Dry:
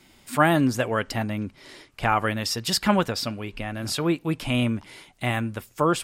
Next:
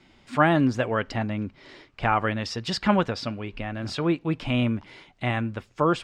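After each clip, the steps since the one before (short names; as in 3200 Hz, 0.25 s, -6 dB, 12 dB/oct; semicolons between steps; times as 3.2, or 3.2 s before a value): air absorption 140 m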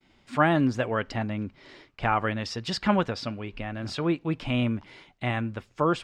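expander -53 dBFS; gain -2 dB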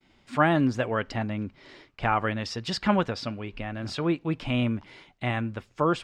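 nothing audible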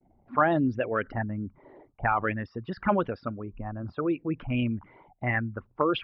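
formant sharpening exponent 2; envelope low-pass 730–4400 Hz up, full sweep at -18.5 dBFS; gain -2 dB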